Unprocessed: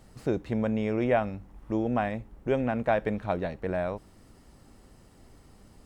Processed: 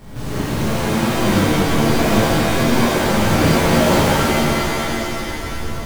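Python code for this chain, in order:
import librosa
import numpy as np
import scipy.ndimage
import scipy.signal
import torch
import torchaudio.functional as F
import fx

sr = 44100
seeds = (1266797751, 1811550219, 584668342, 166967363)

y = fx.halfwave_hold(x, sr)
y = fx.over_compress(y, sr, threshold_db=-30.0, ratio=-1.0)
y = fx.rev_shimmer(y, sr, seeds[0], rt60_s=3.2, semitones=7, shimmer_db=-2, drr_db=-11.5)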